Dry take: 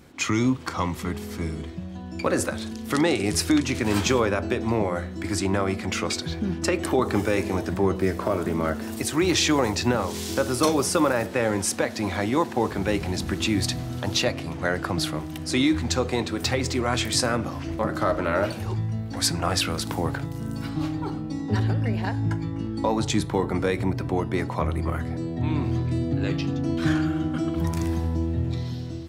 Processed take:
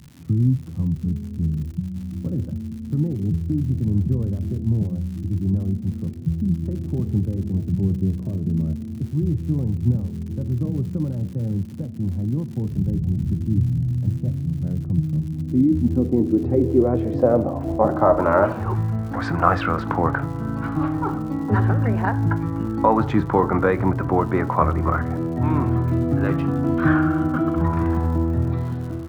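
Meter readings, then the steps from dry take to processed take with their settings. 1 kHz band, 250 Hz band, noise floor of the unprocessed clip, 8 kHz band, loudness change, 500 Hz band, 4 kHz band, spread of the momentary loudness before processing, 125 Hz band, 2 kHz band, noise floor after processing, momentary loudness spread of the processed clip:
+4.0 dB, +3.5 dB, -35 dBFS, under -20 dB, +3.0 dB, +1.5 dB, under -15 dB, 7 LU, +7.0 dB, -2.5 dB, -32 dBFS, 8 LU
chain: low-pass sweep 150 Hz -> 1.3 kHz, 15.07–18.73 s; crackle 170 per s -41 dBFS; trim +4.5 dB

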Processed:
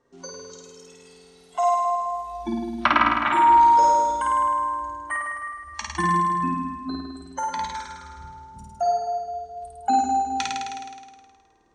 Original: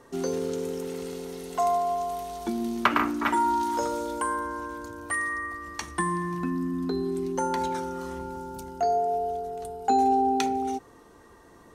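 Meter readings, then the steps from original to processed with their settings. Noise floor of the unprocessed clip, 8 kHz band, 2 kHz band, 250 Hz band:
-53 dBFS, +1.0 dB, +3.5 dB, -2.0 dB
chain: low-pass 7.5 kHz 24 dB/octave; spectral noise reduction 17 dB; flutter echo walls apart 9 m, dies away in 1.5 s; trim +1.5 dB

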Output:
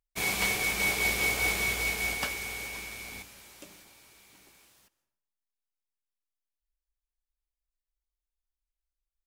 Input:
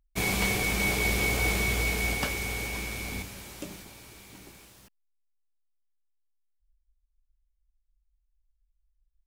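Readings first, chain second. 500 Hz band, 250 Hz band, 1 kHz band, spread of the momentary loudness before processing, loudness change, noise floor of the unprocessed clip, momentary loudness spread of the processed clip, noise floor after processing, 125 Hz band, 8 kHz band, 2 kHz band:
-4.5 dB, -8.0 dB, -2.0 dB, 16 LU, -0.5 dB, -75 dBFS, 14 LU, under -85 dBFS, -10.5 dB, -0.5 dB, 0.0 dB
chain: bass shelf 390 Hz -11 dB; plate-style reverb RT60 0.79 s, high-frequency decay 0.65×, pre-delay 115 ms, DRR 17.5 dB; upward expansion 1.5:1, over -42 dBFS; trim +1.5 dB

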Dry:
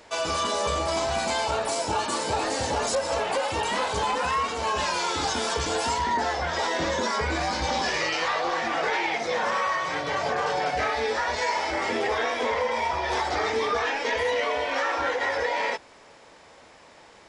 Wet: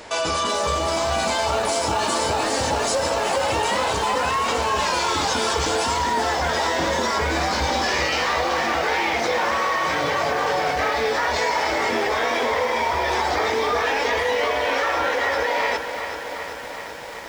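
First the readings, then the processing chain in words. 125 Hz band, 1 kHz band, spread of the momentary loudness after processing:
+5.0 dB, +4.5 dB, 1 LU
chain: in parallel at +1 dB: compressor with a negative ratio -33 dBFS, ratio -1; on the sum: bit-crushed delay 382 ms, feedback 80%, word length 7-bit, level -9.5 dB

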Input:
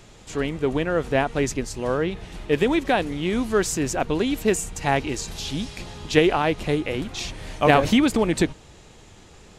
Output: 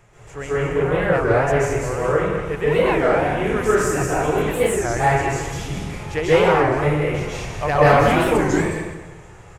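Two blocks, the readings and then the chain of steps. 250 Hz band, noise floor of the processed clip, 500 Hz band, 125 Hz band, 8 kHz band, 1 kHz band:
-0.5 dB, -42 dBFS, +5.5 dB, +6.5 dB, 0.0 dB, +6.0 dB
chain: graphic EQ 125/250/500/1000/2000/4000 Hz +7/-9/+3/+4/+6/-12 dB; saturation -5.5 dBFS, distortion -21 dB; delay 199 ms -9 dB; plate-style reverb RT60 1.2 s, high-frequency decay 0.8×, pre-delay 120 ms, DRR -9 dB; warped record 33 1/3 rpm, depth 250 cents; trim -7 dB

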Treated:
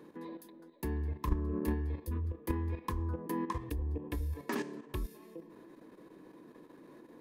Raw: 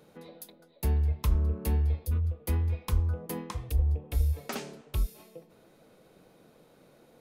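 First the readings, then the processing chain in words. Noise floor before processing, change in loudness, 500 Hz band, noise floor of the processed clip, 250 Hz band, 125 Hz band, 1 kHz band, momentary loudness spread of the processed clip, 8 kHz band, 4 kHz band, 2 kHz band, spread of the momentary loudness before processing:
-61 dBFS, -7.0 dB, 0.0 dB, -57 dBFS, +3.0 dB, -9.0 dB, +2.0 dB, 20 LU, -9.0 dB, -7.5 dB, 0.0 dB, 11 LU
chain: small resonant body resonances 310/1000/1700 Hz, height 18 dB, ringing for 25 ms; level held to a coarse grid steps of 10 dB; trim -4 dB

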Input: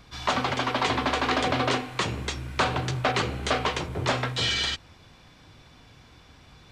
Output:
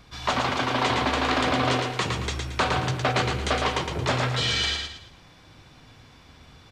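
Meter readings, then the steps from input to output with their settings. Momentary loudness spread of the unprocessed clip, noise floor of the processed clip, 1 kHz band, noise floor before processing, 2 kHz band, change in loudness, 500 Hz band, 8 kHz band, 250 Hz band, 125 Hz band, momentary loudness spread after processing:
5 LU, -52 dBFS, +1.5 dB, -53 dBFS, +1.5 dB, +1.5 dB, +1.5 dB, +1.5 dB, +2.0 dB, +3.0 dB, 5 LU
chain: feedback delay 112 ms, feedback 35%, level -4 dB

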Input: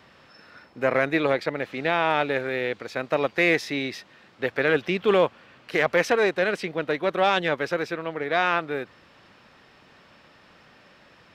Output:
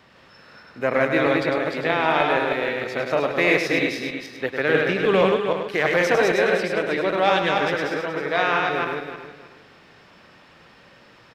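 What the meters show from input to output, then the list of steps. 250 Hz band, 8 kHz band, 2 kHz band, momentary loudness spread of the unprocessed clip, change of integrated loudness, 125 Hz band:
+3.5 dB, +3.5 dB, +3.5 dB, 9 LU, +3.0 dB, +3.5 dB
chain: backward echo that repeats 158 ms, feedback 49%, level -2 dB; delay 102 ms -7 dB

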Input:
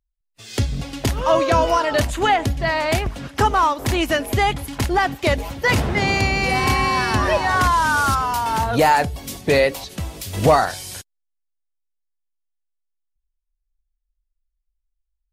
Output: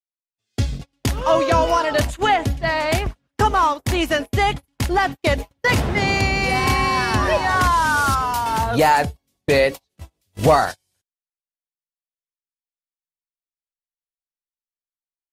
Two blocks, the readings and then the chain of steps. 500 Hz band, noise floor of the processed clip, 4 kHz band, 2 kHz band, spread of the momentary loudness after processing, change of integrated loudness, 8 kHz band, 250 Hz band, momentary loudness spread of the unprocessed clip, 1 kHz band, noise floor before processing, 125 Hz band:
0.0 dB, under -85 dBFS, -0.5 dB, 0.0 dB, 9 LU, 0.0 dB, -1.0 dB, -0.5 dB, 9 LU, 0.0 dB, -76 dBFS, -0.5 dB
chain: gate -23 dBFS, range -39 dB

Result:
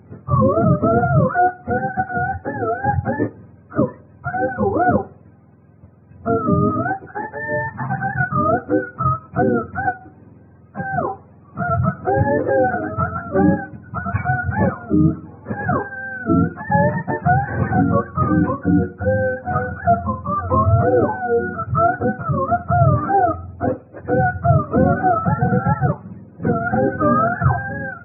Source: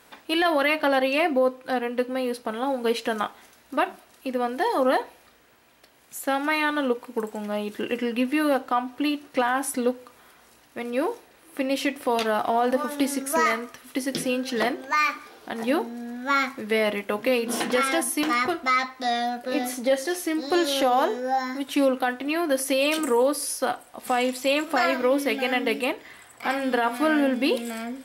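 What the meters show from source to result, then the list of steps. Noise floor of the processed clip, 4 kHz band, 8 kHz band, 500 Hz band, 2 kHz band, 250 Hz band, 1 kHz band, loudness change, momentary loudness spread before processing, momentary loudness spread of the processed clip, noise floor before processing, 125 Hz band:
-47 dBFS, under -40 dB, under -40 dB, +4.0 dB, +2.5 dB, +5.5 dB, +6.5 dB, +5.5 dB, 9 LU, 10 LU, -56 dBFS, +31.0 dB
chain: spectrum inverted on a logarithmic axis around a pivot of 610 Hz; brick-wall FIR low-pass 2.6 kHz; trim +7 dB

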